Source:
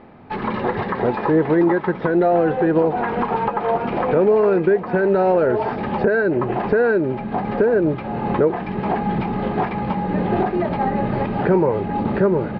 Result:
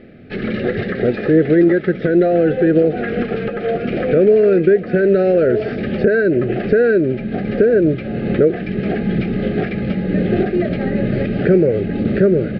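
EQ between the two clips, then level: Butterworth band-stop 960 Hz, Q 0.98; +4.5 dB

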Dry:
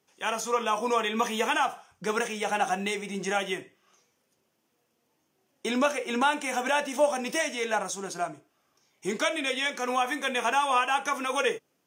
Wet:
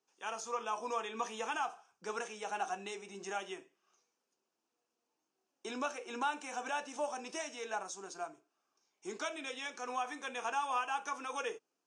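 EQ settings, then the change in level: cabinet simulation 330–8100 Hz, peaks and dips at 560 Hz -6 dB, 2 kHz -9 dB, 3.3 kHz -6 dB; -9.0 dB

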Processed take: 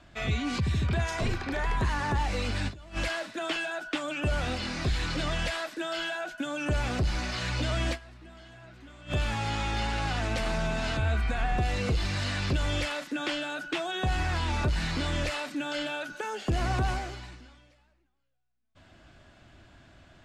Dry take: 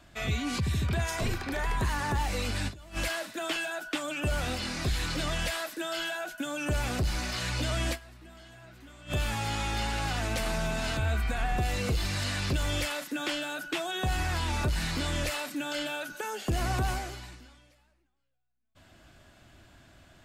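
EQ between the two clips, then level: distance through air 72 m; +1.5 dB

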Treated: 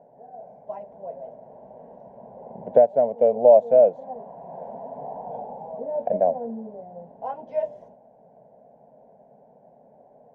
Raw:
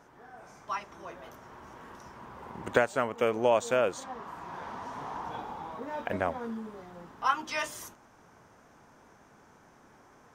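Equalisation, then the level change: high-pass 67 Hz; resonant low-pass 650 Hz, resonance Q 3.6; static phaser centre 330 Hz, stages 6; +3.0 dB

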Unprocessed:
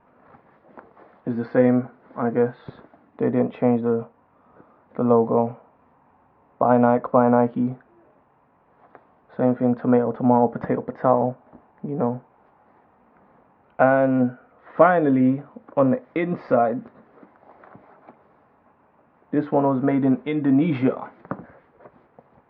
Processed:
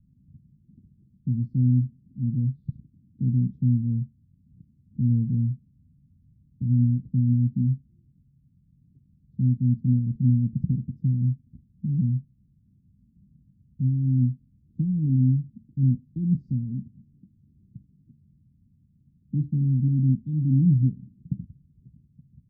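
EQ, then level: inverse Chebyshev band-stop 570–2300 Hz, stop band 70 dB; tilt shelf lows +9.5 dB, about 940 Hz; +1.5 dB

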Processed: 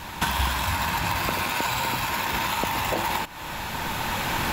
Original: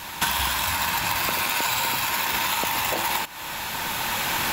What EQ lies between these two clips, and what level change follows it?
tilt EQ -2 dB/octave; 0.0 dB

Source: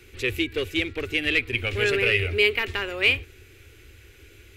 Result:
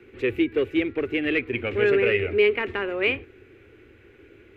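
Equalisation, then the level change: three-band isolator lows -21 dB, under 170 Hz, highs -22 dB, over 2.5 kHz; bass shelf 440 Hz +10 dB; 0.0 dB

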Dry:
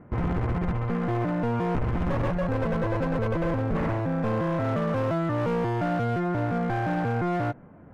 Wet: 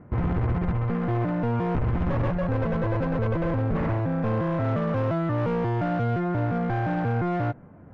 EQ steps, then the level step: distance through air 110 m; peaking EQ 95 Hz +4 dB 1.2 oct; 0.0 dB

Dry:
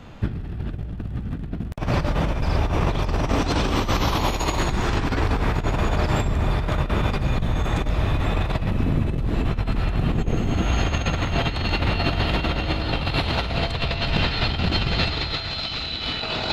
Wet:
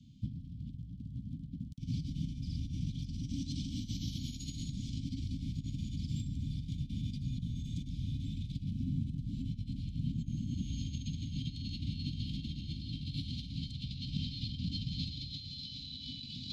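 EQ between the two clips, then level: vowel filter i; inverse Chebyshev band-stop 500–1600 Hz, stop band 70 dB; +11.5 dB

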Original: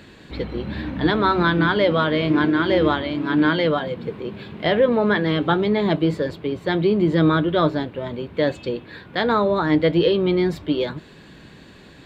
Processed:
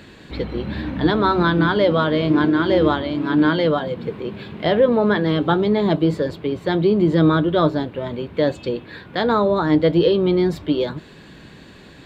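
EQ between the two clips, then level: dynamic bell 2.2 kHz, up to -6 dB, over -38 dBFS, Q 1.3; +2.0 dB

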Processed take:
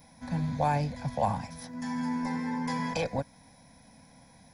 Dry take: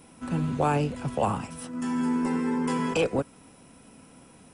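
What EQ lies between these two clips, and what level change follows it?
treble shelf 5.6 kHz +6.5 dB; static phaser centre 1.9 kHz, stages 8; 0.0 dB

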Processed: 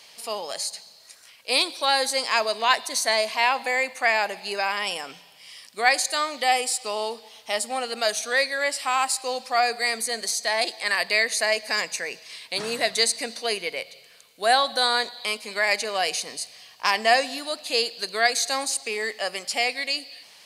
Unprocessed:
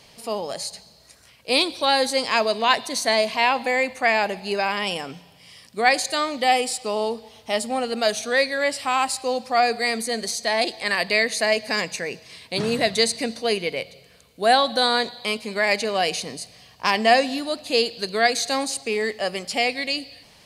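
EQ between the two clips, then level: high-pass 1.3 kHz 6 dB/octave; dynamic bell 3.2 kHz, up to -5 dB, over -36 dBFS, Q 1; +3.5 dB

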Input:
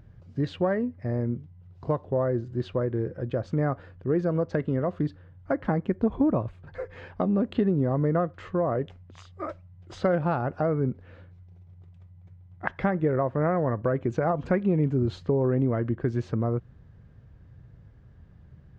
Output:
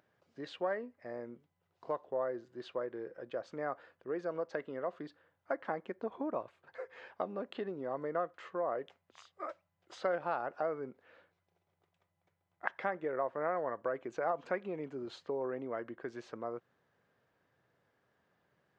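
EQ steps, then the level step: high-pass 540 Hz 12 dB/octave; -5.5 dB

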